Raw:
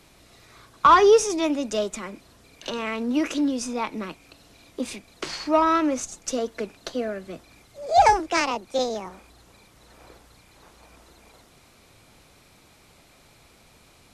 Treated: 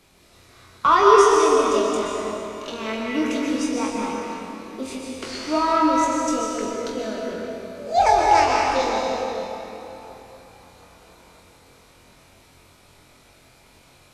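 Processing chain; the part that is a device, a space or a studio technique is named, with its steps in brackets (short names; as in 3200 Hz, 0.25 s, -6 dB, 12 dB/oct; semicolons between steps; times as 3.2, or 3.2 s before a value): tunnel (flutter echo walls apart 3.9 m, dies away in 0.28 s; reverb RT60 3.4 s, pre-delay 0.114 s, DRR -2.5 dB); gain -3.5 dB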